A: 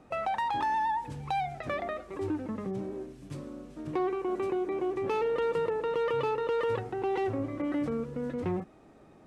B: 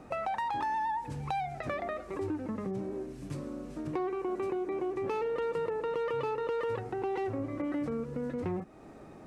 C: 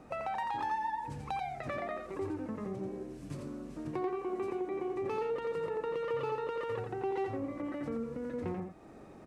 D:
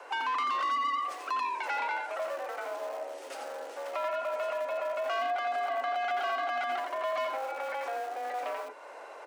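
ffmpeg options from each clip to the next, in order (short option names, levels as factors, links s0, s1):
-af "equalizer=f=3300:t=o:w=0.44:g=-4,acompressor=threshold=0.00631:ratio=2,volume=2"
-af "aecho=1:1:87:0.562,volume=0.668"
-filter_complex "[0:a]asplit=2[s0][s1];[s1]highpass=f=720:p=1,volume=7.08,asoftclip=type=tanh:threshold=0.0668[s2];[s0][s2]amix=inputs=2:normalize=0,lowpass=f=6200:p=1,volume=0.501,acrossover=split=220|1100|2500[s3][s4][s5][s6];[s3]aeval=exprs='(mod(200*val(0)+1,2)-1)/200':c=same[s7];[s7][s4][s5][s6]amix=inputs=4:normalize=0,afreqshift=250"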